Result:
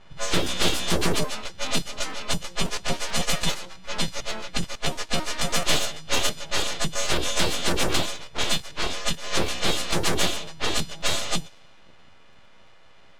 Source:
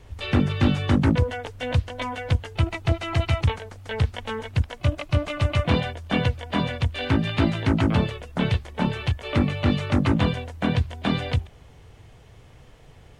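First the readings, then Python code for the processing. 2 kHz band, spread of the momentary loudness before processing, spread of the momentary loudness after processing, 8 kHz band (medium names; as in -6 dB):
+1.5 dB, 7 LU, 7 LU, no reading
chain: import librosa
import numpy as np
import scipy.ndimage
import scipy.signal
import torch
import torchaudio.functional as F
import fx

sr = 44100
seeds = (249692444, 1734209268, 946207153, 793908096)

y = fx.freq_snap(x, sr, grid_st=3)
y = fx.high_shelf_res(y, sr, hz=2800.0, db=7.0, q=1.5)
y = np.abs(y)
y = fx.env_lowpass(y, sr, base_hz=2200.0, full_db=-16.0)
y = fx.buffer_crackle(y, sr, first_s=0.44, period_s=0.11, block=512, kind='repeat')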